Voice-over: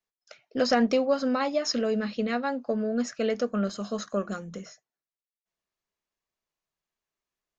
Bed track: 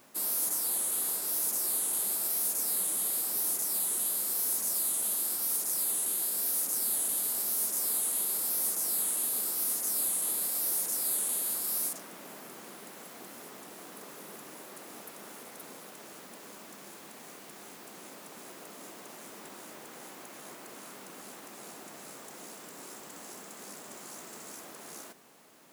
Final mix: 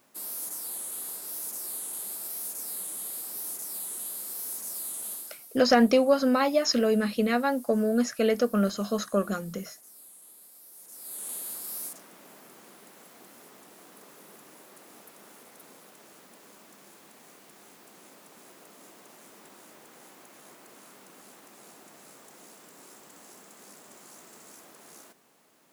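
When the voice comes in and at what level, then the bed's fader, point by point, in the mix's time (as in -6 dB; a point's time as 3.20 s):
5.00 s, +3.0 dB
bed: 5.13 s -5.5 dB
5.53 s -21 dB
10.72 s -21 dB
11.29 s -5 dB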